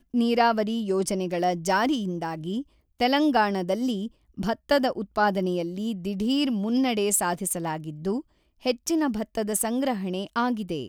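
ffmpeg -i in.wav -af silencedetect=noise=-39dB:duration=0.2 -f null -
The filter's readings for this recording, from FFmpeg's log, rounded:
silence_start: 2.62
silence_end: 3.00 | silence_duration: 0.38
silence_start: 4.08
silence_end: 4.37 | silence_duration: 0.30
silence_start: 8.21
silence_end: 8.63 | silence_duration: 0.42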